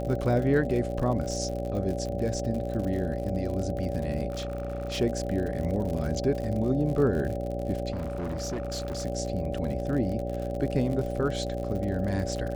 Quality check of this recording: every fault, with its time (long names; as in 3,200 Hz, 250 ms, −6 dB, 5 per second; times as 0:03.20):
mains buzz 60 Hz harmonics 13 −33 dBFS
surface crackle 67 per second −33 dBFS
whistle 570 Hz −34 dBFS
0:04.30–0:04.99: clipping −28.5 dBFS
0:07.92–0:09.05: clipping −28.5 dBFS